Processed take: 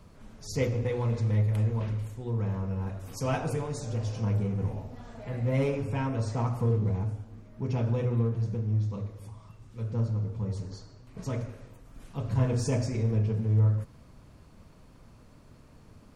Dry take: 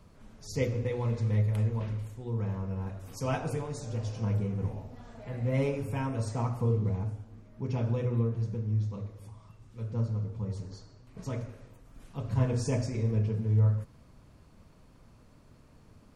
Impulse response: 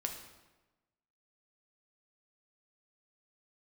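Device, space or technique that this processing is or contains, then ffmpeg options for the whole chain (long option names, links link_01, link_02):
parallel distortion: -filter_complex "[0:a]asplit=2[link_01][link_02];[link_02]asoftclip=type=hard:threshold=-32dB,volume=-7dB[link_03];[link_01][link_03]amix=inputs=2:normalize=0,asettb=1/sr,asplit=3[link_04][link_05][link_06];[link_04]atrim=end=5.754[link_07];[link_05]atrim=start=5.75:end=6.47,asetpts=PTS-STARTPTS,afade=type=in:duration=0.004:curve=qsin,afade=type=out:start_time=0.716:duration=0.004:curve=qsin,lowpass=6500[link_08];[link_06]atrim=start=6.466[link_09];[link_07][link_08]acrossfade=duration=0.004:curve1=hsin:curve2=qsin[link_10];[link_10][link_09]acrossfade=duration=0.004:curve1=qsin:curve2=hsin"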